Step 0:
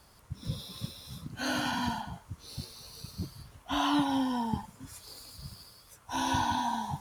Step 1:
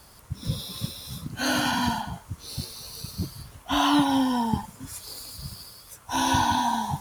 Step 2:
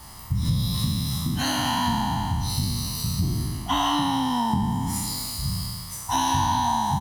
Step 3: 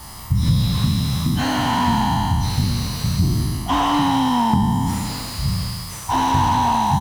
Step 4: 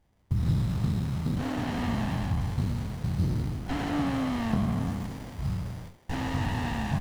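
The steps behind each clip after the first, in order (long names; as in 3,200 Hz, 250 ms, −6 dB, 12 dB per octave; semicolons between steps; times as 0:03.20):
high-shelf EQ 7,800 Hz +6 dB; level +6.5 dB
peak hold with a decay on every bin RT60 1.53 s; downward compressor 4 to 1, threshold −28 dBFS, peak gain reduction 11.5 dB; comb filter 1 ms, depth 62%; level +4 dB
slew-rate limiting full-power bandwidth 79 Hz; level +6.5 dB
noise gate with hold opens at −18 dBFS; feedback echo with a high-pass in the loop 347 ms, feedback 77%, high-pass 970 Hz, level −17.5 dB; windowed peak hold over 33 samples; level −8.5 dB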